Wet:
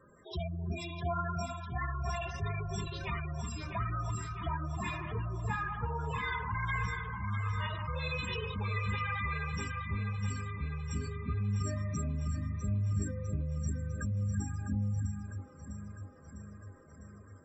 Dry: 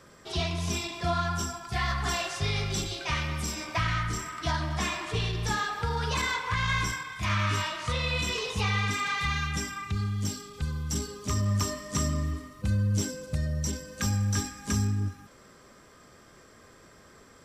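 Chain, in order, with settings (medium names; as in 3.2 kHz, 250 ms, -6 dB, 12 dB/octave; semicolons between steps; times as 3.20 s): spectral gate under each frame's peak -10 dB strong; echo whose repeats swap between lows and highs 326 ms, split 1 kHz, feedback 79%, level -6 dB; trim -5 dB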